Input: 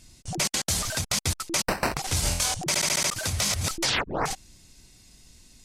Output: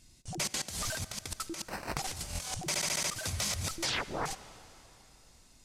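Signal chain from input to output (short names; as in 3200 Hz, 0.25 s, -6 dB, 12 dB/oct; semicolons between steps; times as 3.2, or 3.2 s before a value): 0.59–2.6 negative-ratio compressor -29 dBFS, ratio -0.5; reverb RT60 3.4 s, pre-delay 43 ms, DRR 15 dB; gain -7.5 dB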